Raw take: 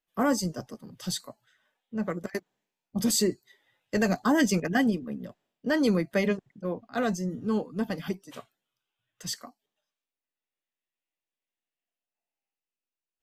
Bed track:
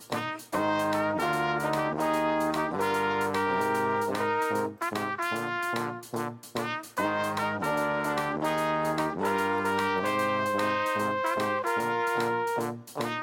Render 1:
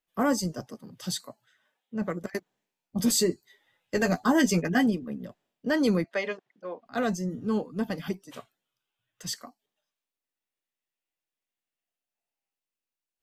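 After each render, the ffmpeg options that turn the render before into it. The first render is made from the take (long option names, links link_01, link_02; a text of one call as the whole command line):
ffmpeg -i in.wav -filter_complex "[0:a]asettb=1/sr,asplit=3[link_01][link_02][link_03];[link_01]atrim=end=0.624[link_04];[link_02]atrim=start=0.62:end=2.02,asetpts=PTS-STARTPTS,afade=type=in:duration=0.004:curve=qsin,afade=type=out:start_time=1.396:duration=0.004:curve=qsin,highpass=93[link_05];[link_03]atrim=start=2.016[link_06];[link_04][link_05]acrossfade=duration=0.004:curve1=hsin:curve2=qsin[link_07];[link_07][link_06]acrossfade=duration=0.004:curve1=qsin:curve2=hsin,asettb=1/sr,asplit=3[link_08][link_09][link_10];[link_08]atrim=end=2.984[link_11];[link_09]atrim=start=2.98:end=4.86,asetpts=PTS-STARTPTS,afade=type=in:duration=0.004:curve=qsin,afade=type=out:start_time=1.876:duration=0.004:curve=qsin,asplit=2[link_12][link_13];[link_13]adelay=12,volume=-6.5dB[link_14];[link_12][link_14]amix=inputs=2:normalize=0,atrim=end_sample=82908[link_15];[link_10]atrim=start=4.856[link_16];[link_11][link_15]acrossfade=duration=0.004:curve1=hsin:curve2=qsin[link_17];[link_17][link_16]acrossfade=duration=0.004:curve1=qsin:curve2=hsin,asettb=1/sr,asplit=3[link_18][link_19][link_20];[link_18]atrim=end=6.044[link_21];[link_19]atrim=start=6.04:end=6.86,asetpts=PTS-STARTPTS,afade=type=in:duration=0.004:curve=qsin,afade=type=out:start_time=0.816:duration=0.004:curve=qsin,highpass=530,lowpass=5000[link_22];[link_20]atrim=start=6.856[link_23];[link_21][link_22]acrossfade=duration=0.004:curve1=hsin:curve2=qsin[link_24];[link_24][link_23]acrossfade=duration=0.004:curve1=qsin:curve2=hsin" out.wav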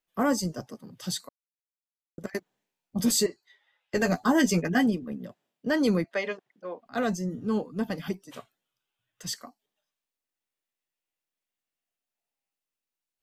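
ffmpeg -i in.wav -filter_complex "[0:a]asettb=1/sr,asplit=3[link_01][link_02][link_03];[link_01]atrim=end=3.264[link_04];[link_02]atrim=start=3.26:end=3.94,asetpts=PTS-STARTPTS,afade=type=in:duration=0.004:curve=qsin,afade=type=out:start_time=0.676:duration=0.004:curve=qsin,acrossover=split=560 5400:gain=0.1 1 0.178[link_05][link_06][link_07];[link_05][link_06][link_07]amix=inputs=3:normalize=0[link_08];[link_03]atrim=start=3.936[link_09];[link_04][link_08]acrossfade=duration=0.004:curve1=hsin:curve2=qsin[link_10];[link_10][link_09]acrossfade=duration=0.004:curve1=qsin:curve2=hsin,asettb=1/sr,asplit=3[link_11][link_12][link_13];[link_11]atrim=end=5.124[link_14];[link_12]atrim=start=5.12:end=5.67,asetpts=PTS-STARTPTS,afade=type=in:duration=0.004:curve=qsin,afade=type=out:start_time=0.546:duration=0.004:curve=qsin,highpass=95[link_15];[link_13]atrim=start=5.666[link_16];[link_14][link_15]acrossfade=duration=0.004:curve1=hsin:curve2=qsin[link_17];[link_17][link_16]acrossfade=duration=0.004:curve1=qsin:curve2=hsin,asplit=3[link_18][link_19][link_20];[link_18]atrim=end=1.29,asetpts=PTS-STARTPTS,afade=type=out:start_time=1.286:duration=0.004:curve=hsin[link_21];[link_19]atrim=start=1.29:end=2.18,asetpts=PTS-STARTPTS,volume=0[link_22];[link_20]atrim=start=2.18,asetpts=PTS-STARTPTS,afade=type=in:duration=0.004:curve=hsin[link_23];[link_21][link_22][link_23]concat=n=3:v=0:a=1" out.wav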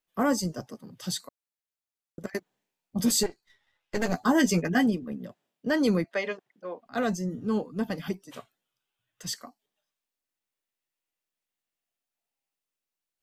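ffmpeg -i in.wav -filter_complex "[0:a]asettb=1/sr,asplit=3[link_01][link_02][link_03];[link_01]atrim=end=3.234[link_04];[link_02]atrim=start=3.23:end=4.14,asetpts=PTS-STARTPTS,afade=type=in:duration=0.004:curve=qsin,afade=type=out:start_time=0.906:duration=0.004:curve=qsin,aeval=exprs='if(lt(val(0),0),0.251*val(0),val(0))':channel_layout=same[link_05];[link_03]atrim=start=4.136[link_06];[link_04][link_05]acrossfade=duration=0.004:curve1=hsin:curve2=qsin[link_07];[link_07][link_06]acrossfade=duration=0.004:curve1=qsin:curve2=hsin" out.wav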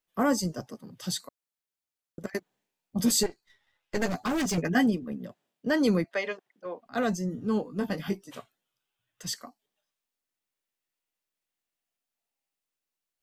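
ffmpeg -i in.wav -filter_complex "[0:a]asettb=1/sr,asplit=3[link_01][link_02][link_03];[link_01]atrim=end=4.084[link_04];[link_02]atrim=start=4.08:end=4.58,asetpts=PTS-STARTPTS,afade=type=in:duration=0.004:curve=qsin,afade=type=out:start_time=0.496:duration=0.004:curve=qsin,volume=25.5dB,asoftclip=hard,volume=-25.5dB[link_05];[link_03]atrim=start=4.576[link_06];[link_04][link_05]acrossfade=duration=0.004:curve1=hsin:curve2=qsin[link_07];[link_07][link_06]acrossfade=duration=0.004:curve1=qsin:curve2=hsin,asettb=1/sr,asplit=3[link_08][link_09][link_10];[link_08]atrim=end=6.104[link_11];[link_09]atrim=start=6.1:end=6.66,asetpts=PTS-STARTPTS,afade=type=in:duration=0.004:curve=qsin,afade=type=out:start_time=0.556:duration=0.004:curve=qsin,highpass=frequency=280:poles=1[link_12];[link_10]atrim=start=6.656[link_13];[link_11][link_12]acrossfade=duration=0.004:curve1=hsin:curve2=qsin[link_14];[link_14][link_13]acrossfade=duration=0.004:curve1=qsin:curve2=hsin,asettb=1/sr,asplit=3[link_15][link_16][link_17];[link_15]atrim=end=7.634[link_18];[link_16]atrim=start=7.63:end=8.3,asetpts=PTS-STARTPTS,afade=type=in:duration=0.004:curve=qsin,afade=type=out:start_time=0.666:duration=0.004:curve=qsin,asplit=2[link_19][link_20];[link_20]adelay=20,volume=-6.5dB[link_21];[link_19][link_21]amix=inputs=2:normalize=0,atrim=end_sample=29547[link_22];[link_17]atrim=start=8.296[link_23];[link_18][link_22]acrossfade=duration=0.004:curve1=hsin:curve2=qsin[link_24];[link_24][link_23]acrossfade=duration=0.004:curve1=qsin:curve2=hsin" out.wav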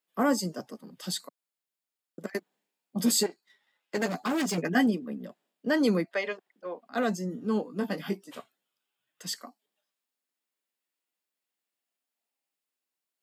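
ffmpeg -i in.wav -af "highpass=frequency=180:width=0.5412,highpass=frequency=180:width=1.3066,bandreject=frequency=6000:width=12" out.wav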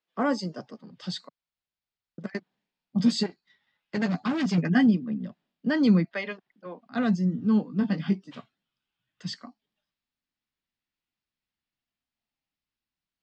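ffmpeg -i in.wav -af "lowpass=frequency=5200:width=0.5412,lowpass=frequency=5200:width=1.3066,asubboost=boost=9:cutoff=150" out.wav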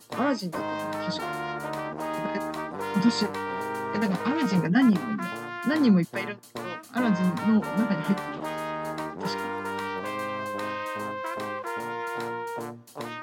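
ffmpeg -i in.wav -i bed.wav -filter_complex "[1:a]volume=-4.5dB[link_01];[0:a][link_01]amix=inputs=2:normalize=0" out.wav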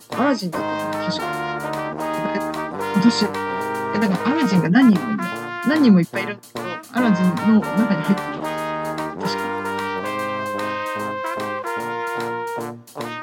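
ffmpeg -i in.wav -af "volume=7dB" out.wav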